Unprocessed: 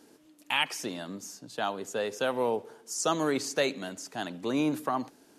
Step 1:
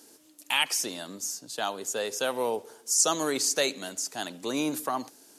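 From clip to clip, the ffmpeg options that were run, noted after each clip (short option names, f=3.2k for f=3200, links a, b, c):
-af "bass=f=250:g=-6,treble=f=4k:g=12"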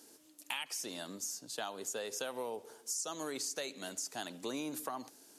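-af "acompressor=threshold=-31dB:ratio=10,volume=-4.5dB"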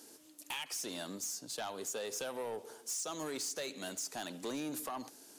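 -af "asoftclip=type=tanh:threshold=-36.5dB,volume=3dB"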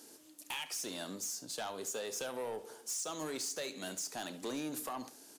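-af "aecho=1:1:32|70:0.178|0.141"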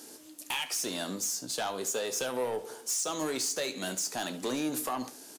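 -filter_complex "[0:a]asplit=2[a][b];[b]adelay=16,volume=-12dB[c];[a][c]amix=inputs=2:normalize=0,volume=7dB"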